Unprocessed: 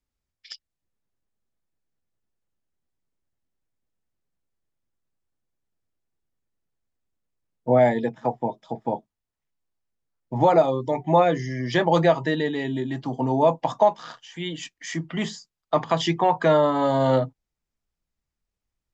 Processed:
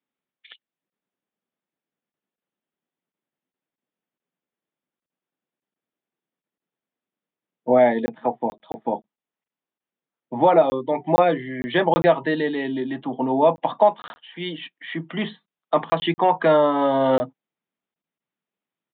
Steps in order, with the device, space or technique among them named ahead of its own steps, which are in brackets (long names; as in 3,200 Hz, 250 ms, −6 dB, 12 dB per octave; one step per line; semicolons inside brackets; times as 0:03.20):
call with lost packets (high-pass filter 180 Hz 24 dB per octave; downsampling to 8,000 Hz; dropped packets of 20 ms random)
level +2 dB